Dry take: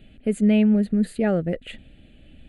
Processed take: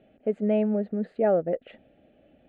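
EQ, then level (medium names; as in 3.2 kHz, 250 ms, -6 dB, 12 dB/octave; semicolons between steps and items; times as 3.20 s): band-pass filter 660 Hz, Q 1.7; distance through air 120 m; +5.0 dB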